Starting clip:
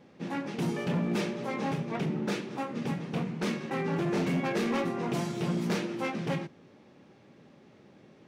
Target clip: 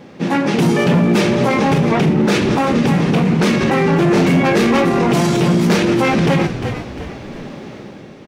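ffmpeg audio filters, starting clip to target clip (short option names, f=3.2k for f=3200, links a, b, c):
-filter_complex "[0:a]dynaudnorm=f=130:g=9:m=8.5dB,asplit=2[a][b];[b]asplit=3[c][d][e];[c]adelay=351,afreqshift=-48,volume=-17dB[f];[d]adelay=702,afreqshift=-96,volume=-25dB[g];[e]adelay=1053,afreqshift=-144,volume=-32.9dB[h];[f][g][h]amix=inputs=3:normalize=0[i];[a][i]amix=inputs=2:normalize=0,alimiter=level_in=23dB:limit=-1dB:release=50:level=0:latency=1,volume=-6dB"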